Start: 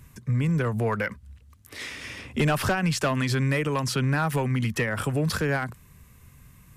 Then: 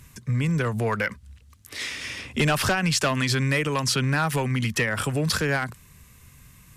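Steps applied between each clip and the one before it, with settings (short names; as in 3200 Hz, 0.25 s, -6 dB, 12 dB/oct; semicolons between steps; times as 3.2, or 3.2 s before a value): bell 5300 Hz +7 dB 2.9 oct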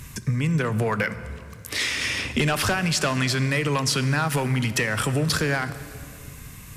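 compressor 4:1, threshold -31 dBFS, peak gain reduction 10.5 dB; on a send at -12 dB: reverb RT60 2.4 s, pre-delay 9 ms; on the sum: gain +9 dB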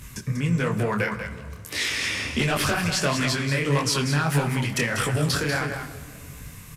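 on a send: echo 0.192 s -8 dB; on the sum: detuned doubles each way 54 cents; gain +2.5 dB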